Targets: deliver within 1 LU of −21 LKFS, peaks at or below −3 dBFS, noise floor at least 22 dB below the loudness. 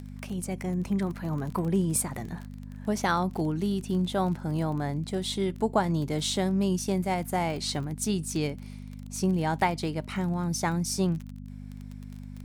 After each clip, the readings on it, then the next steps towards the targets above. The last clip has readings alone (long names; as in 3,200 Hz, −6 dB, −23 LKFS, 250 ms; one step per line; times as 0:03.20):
crackle rate 25 per second; mains hum 50 Hz; hum harmonics up to 250 Hz; level of the hum −39 dBFS; integrated loudness −29.0 LKFS; sample peak −12.0 dBFS; target loudness −21.0 LKFS
→ click removal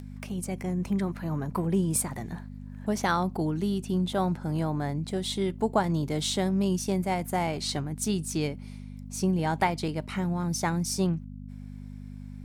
crackle rate 0.56 per second; mains hum 50 Hz; hum harmonics up to 250 Hz; level of the hum −39 dBFS
→ hum removal 50 Hz, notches 5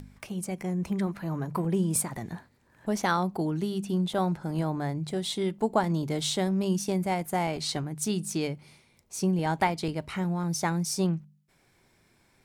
mains hum none found; integrated loudness −29.5 LKFS; sample peak −12.0 dBFS; target loudness −21.0 LKFS
→ level +8.5 dB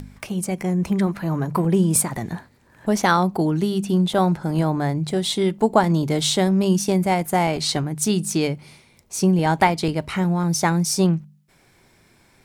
integrated loudness −21.0 LKFS; sample peak −3.5 dBFS; background noise floor −57 dBFS